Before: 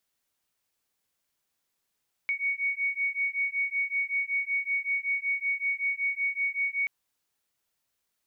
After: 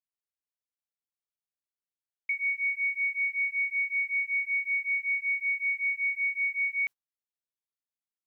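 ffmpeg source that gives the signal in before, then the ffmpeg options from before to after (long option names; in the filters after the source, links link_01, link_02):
-f lavfi -i "aevalsrc='0.0335*(sin(2*PI*2230*t)+sin(2*PI*2235.3*t))':duration=4.58:sample_rate=44100"
-af "agate=range=-24dB:threshold=-36dB:ratio=16:detection=peak"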